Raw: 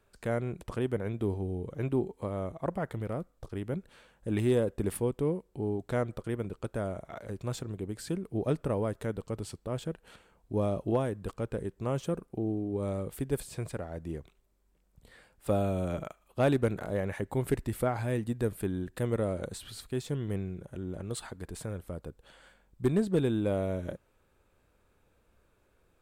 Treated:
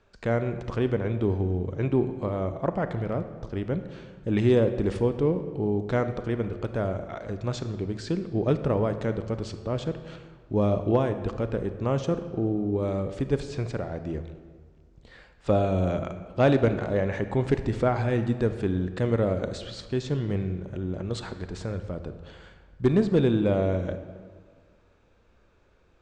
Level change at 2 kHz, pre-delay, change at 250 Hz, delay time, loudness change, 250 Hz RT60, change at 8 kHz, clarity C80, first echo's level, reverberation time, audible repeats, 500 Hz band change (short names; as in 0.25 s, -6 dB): +6.0 dB, 29 ms, +6.0 dB, none, +6.0 dB, 1.8 s, n/a, 11.5 dB, none, 1.8 s, none, +6.0 dB